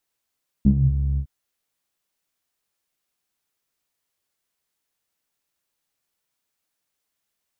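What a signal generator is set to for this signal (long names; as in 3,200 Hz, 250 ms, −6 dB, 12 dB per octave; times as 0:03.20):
subtractive voice saw C#2 12 dB per octave, low-pass 110 Hz, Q 7.2, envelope 1 octave, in 0.28 s, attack 4.9 ms, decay 0.09 s, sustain −7 dB, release 0.08 s, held 0.53 s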